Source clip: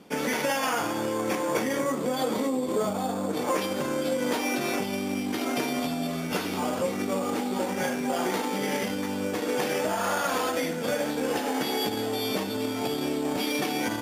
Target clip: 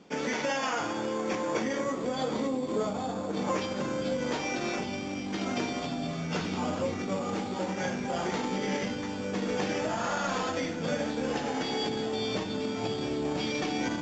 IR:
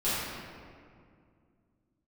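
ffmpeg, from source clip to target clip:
-filter_complex "[0:a]asplit=2[link_01][link_02];[link_02]asubboost=boost=10:cutoff=190[link_03];[1:a]atrim=start_sample=2205[link_04];[link_03][link_04]afir=irnorm=-1:irlink=0,volume=-23.5dB[link_05];[link_01][link_05]amix=inputs=2:normalize=0,volume=-4dB" -ar 16000 -c:a pcm_alaw

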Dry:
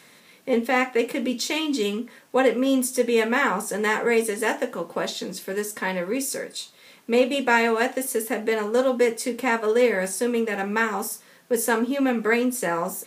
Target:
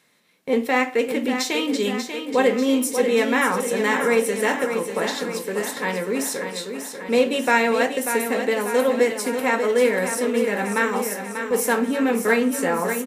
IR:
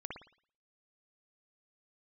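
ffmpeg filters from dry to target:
-filter_complex "[0:a]agate=range=-12dB:threshold=-46dB:ratio=16:detection=peak,aecho=1:1:590|1180|1770|2360|2950|3540|4130|4720:0.398|0.239|0.143|0.086|0.0516|0.031|0.0186|0.0111,asplit=2[link_01][link_02];[1:a]atrim=start_sample=2205[link_03];[link_02][link_03]afir=irnorm=-1:irlink=0,volume=-12.5dB[link_04];[link_01][link_04]amix=inputs=2:normalize=0"

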